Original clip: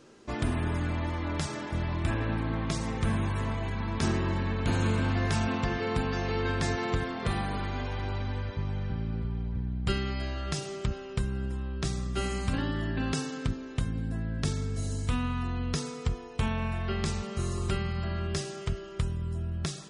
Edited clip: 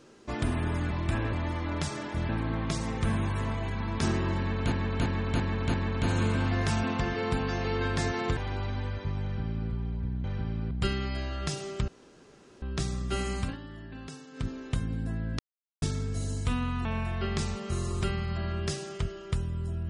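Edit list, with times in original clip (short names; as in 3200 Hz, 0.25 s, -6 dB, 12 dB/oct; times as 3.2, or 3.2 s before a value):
1.87–2.29 move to 0.91
4.38–4.72 loop, 5 plays
7.01–7.89 cut
8.75–9.22 copy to 9.76
10.93–11.67 room tone
12.44–13.55 dip -12.5 dB, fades 0.18 s
14.44 insert silence 0.43 s
15.47–16.52 cut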